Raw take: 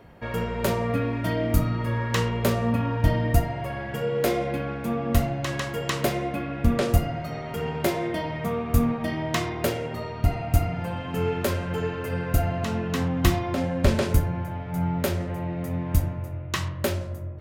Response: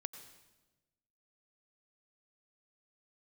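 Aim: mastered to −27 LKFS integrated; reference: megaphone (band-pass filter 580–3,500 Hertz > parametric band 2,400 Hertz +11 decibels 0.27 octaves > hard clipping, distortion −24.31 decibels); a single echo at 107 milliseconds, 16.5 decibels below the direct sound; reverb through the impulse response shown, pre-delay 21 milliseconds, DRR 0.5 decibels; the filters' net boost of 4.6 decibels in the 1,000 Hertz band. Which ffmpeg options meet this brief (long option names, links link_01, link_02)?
-filter_complex "[0:a]equalizer=frequency=1000:width_type=o:gain=7,aecho=1:1:107:0.15,asplit=2[link_01][link_02];[1:a]atrim=start_sample=2205,adelay=21[link_03];[link_02][link_03]afir=irnorm=-1:irlink=0,volume=2dB[link_04];[link_01][link_04]amix=inputs=2:normalize=0,highpass=580,lowpass=3500,equalizer=frequency=2400:width_type=o:width=0.27:gain=11,asoftclip=type=hard:threshold=-14.5dB,volume=-0.5dB"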